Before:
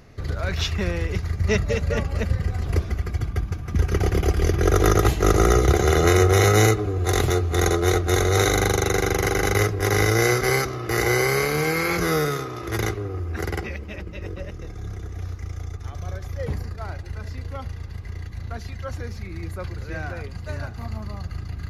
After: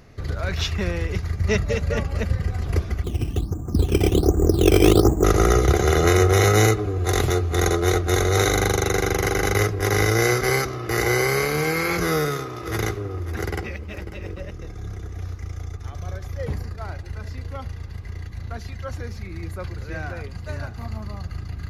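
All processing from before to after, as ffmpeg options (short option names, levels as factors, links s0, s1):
-filter_complex "[0:a]asettb=1/sr,asplit=3[s0][s1][s2];[s0]atrim=end=3.044[s3];[s1]atrim=start=3.04:end=5.24,asetpts=PTS-STARTPTS,afade=t=in:d=0.004:c=qsin,afade=t=out:st=2.196:d=0.004:c=qsin,lowpass=f=1100:w=0.5412,lowpass=f=1100:w=1.3066,equalizer=f=290:t=o:w=1:g=9.5,acrusher=samples=11:mix=1:aa=0.000001:lfo=1:lforange=11:lforate=1.3[s4];[s2]atrim=start=5.236[s5];[s3][s4]acrossfade=d=0.004:c1=hsin:c2=qsin[s6];[s6][s5]acrossfade=d=0.004:c1=qsin:c2=hsin,asettb=1/sr,asplit=3[s7][s8][s9];[s7]atrim=end=12.114[s10];[s8]atrim=start=12.11:end=14.45,asetpts=PTS-STARTPTS,afade=t=in:d=0.004:c=qsin,afade=t=out:st=2.336:d=0.004:c=qsin,aeval=exprs='sgn(val(0))*max(abs(val(0))-0.0015,0)':c=same,aecho=1:1:545:0.2,atrim=end_sample=103194[s11];[s9]atrim=start=14.446[s12];[s10][s11]acrossfade=d=0.004:c1=hsin:c2=qsin[s13];[s13][s12]acrossfade=d=0.004:c1=qsin:c2=hsin"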